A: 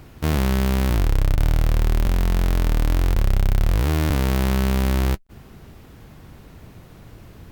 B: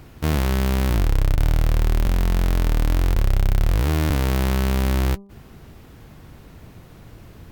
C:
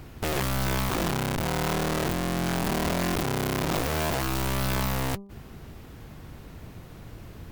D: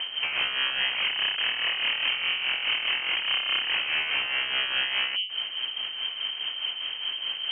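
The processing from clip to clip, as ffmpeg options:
ffmpeg -i in.wav -af "bandreject=frequency=198.7:width_type=h:width=4,bandreject=frequency=397.4:width_type=h:width=4,bandreject=frequency=596.1:width_type=h:width=4,bandreject=frequency=794.8:width_type=h:width=4,bandreject=frequency=993.5:width_type=h:width=4,bandreject=frequency=1192.2:width_type=h:width=4" out.wav
ffmpeg -i in.wav -af "aeval=exprs='(mod(12.6*val(0)+1,2)-1)/12.6':channel_layout=same" out.wav
ffmpeg -i in.wav -af "aeval=exprs='0.0794*sin(PI/2*3.16*val(0)/0.0794)':channel_layout=same,lowpass=frequency=2700:width_type=q:width=0.5098,lowpass=frequency=2700:width_type=q:width=0.6013,lowpass=frequency=2700:width_type=q:width=0.9,lowpass=frequency=2700:width_type=q:width=2.563,afreqshift=-3200,tremolo=f=4.8:d=0.51" out.wav

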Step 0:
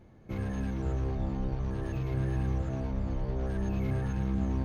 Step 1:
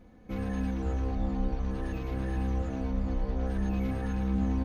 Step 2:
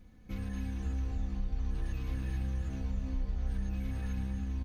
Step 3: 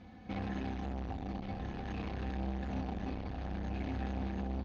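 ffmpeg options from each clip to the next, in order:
ffmpeg -i in.wav -af "aecho=1:1:4:0.72" out.wav
ffmpeg -i in.wav -filter_complex "[0:a]acompressor=threshold=-31dB:ratio=6,equalizer=frequency=580:width=0.39:gain=-13.5,asplit=2[link_01][link_02];[link_02]aecho=0:1:253.6|291.5:0.316|0.447[link_03];[link_01][link_03]amix=inputs=2:normalize=0,volume=2.5dB" out.wav
ffmpeg -i in.wav -af "asoftclip=type=tanh:threshold=-39.5dB,highpass=100,equalizer=frequency=140:width_type=q:width=4:gain=-8,equalizer=frequency=410:width_type=q:width=4:gain=-3,equalizer=frequency=770:width_type=q:width=4:gain=10,lowpass=frequency=4800:width=0.5412,lowpass=frequency=4800:width=1.3066,aecho=1:1:1128:0.473,volume=9dB" out.wav

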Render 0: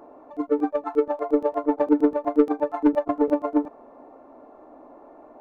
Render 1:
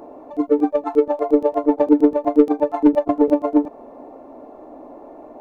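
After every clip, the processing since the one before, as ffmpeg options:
ffmpeg -i in.wav -filter_complex "[0:a]equalizer=frequency=1400:width_type=o:width=1.1:gain=-8,asplit=2[link_01][link_02];[link_02]acompressor=threshold=-27dB:ratio=6,volume=-2dB[link_03];[link_01][link_03]amix=inputs=2:normalize=0,volume=4dB" out.wav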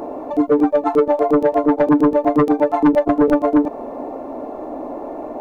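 ffmpeg -i in.wav -af "aeval=exprs='0.891*sin(PI/2*2.24*val(0)/0.891)':channel_layout=same,alimiter=limit=-8dB:level=0:latency=1:release=111" out.wav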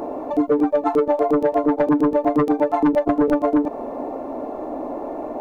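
ffmpeg -i in.wav -af "acompressor=threshold=-14dB:ratio=6" out.wav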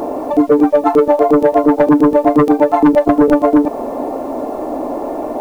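ffmpeg -i in.wav -af "acrusher=bits=8:mix=0:aa=0.000001,volume=7.5dB" out.wav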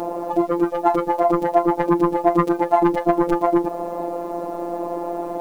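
ffmpeg -i in.wav -af "afftfilt=real='hypot(re,im)*cos(PI*b)':imag='0':win_size=1024:overlap=0.75,volume=-1.5dB" out.wav

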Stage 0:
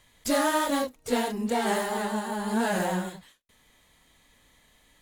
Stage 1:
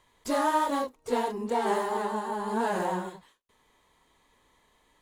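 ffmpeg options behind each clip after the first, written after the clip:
ffmpeg -i in.wav -af "equalizer=frequency=400:width_type=o:width=0.67:gain=9,equalizer=frequency=1000:width_type=o:width=0.67:gain=11,equalizer=frequency=16000:width_type=o:width=0.67:gain=-6,volume=-7dB" out.wav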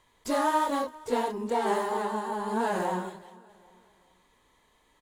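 ffmpeg -i in.wav -af "aecho=1:1:398|796|1194:0.0794|0.0326|0.0134" out.wav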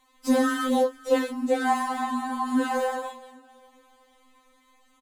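ffmpeg -i in.wav -filter_complex "[0:a]asplit=2[link_01][link_02];[link_02]adelay=24,volume=-13dB[link_03];[link_01][link_03]amix=inputs=2:normalize=0,aeval=exprs='val(0)*sin(2*PI*33*n/s)':channel_layout=same,afftfilt=real='re*3.46*eq(mod(b,12),0)':imag='im*3.46*eq(mod(b,12),0)':win_size=2048:overlap=0.75,volume=9dB" out.wav

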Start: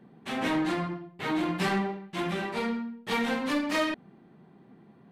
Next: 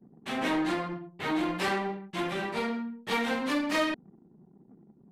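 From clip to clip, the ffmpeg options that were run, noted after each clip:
ffmpeg -i in.wav -filter_complex "[0:a]anlmdn=0.00158,acrossover=split=210[link_01][link_02];[link_01]aeval=exprs='0.01*(abs(mod(val(0)/0.01+3,4)-2)-1)':channel_layout=same[link_03];[link_03][link_02]amix=inputs=2:normalize=0" out.wav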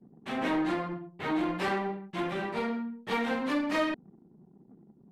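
ffmpeg -i in.wav -af "highshelf=frequency=3200:gain=-9" out.wav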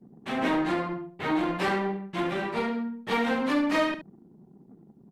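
ffmpeg -i in.wav -af "aecho=1:1:72:0.251,volume=3.5dB" out.wav

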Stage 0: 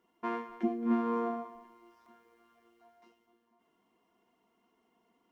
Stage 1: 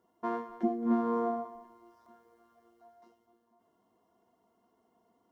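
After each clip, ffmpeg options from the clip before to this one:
ffmpeg -i in.wav -af "equalizer=frequency=100:width_type=o:width=0.67:gain=10,equalizer=frequency=630:width_type=o:width=0.67:gain=6,equalizer=frequency=2500:width_type=o:width=0.67:gain=-12" out.wav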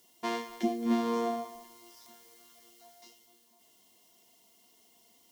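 ffmpeg -i in.wav -af "aexciter=amount=10.5:drive=5.8:freq=2100" out.wav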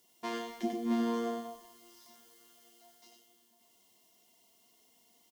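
ffmpeg -i in.wav -af "aecho=1:1:95:0.596,volume=-4.5dB" out.wav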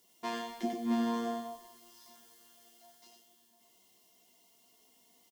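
ffmpeg -i in.wav -filter_complex "[0:a]asplit=2[link_01][link_02];[link_02]adelay=16,volume=-6dB[link_03];[link_01][link_03]amix=inputs=2:normalize=0" out.wav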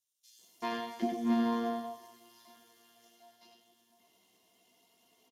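ffmpeg -i in.wav -filter_complex "[0:a]acrossover=split=5800[link_01][link_02];[link_01]adelay=390[link_03];[link_03][link_02]amix=inputs=2:normalize=0,volume=1.5dB" -ar 32000 -c:a libspeex -b:a 36k out.spx

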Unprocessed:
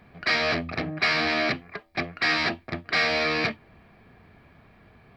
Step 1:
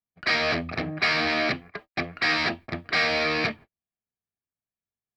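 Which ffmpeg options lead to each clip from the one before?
ffmpeg -i in.wav -af "agate=range=-47dB:threshold=-42dB:ratio=16:detection=peak" out.wav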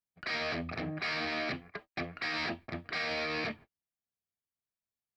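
ffmpeg -i in.wav -af "alimiter=limit=-21dB:level=0:latency=1:release=11,volume=-5dB" out.wav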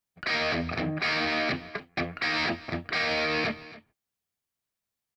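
ffmpeg -i in.wav -af "aecho=1:1:275:0.126,volume=7dB" out.wav

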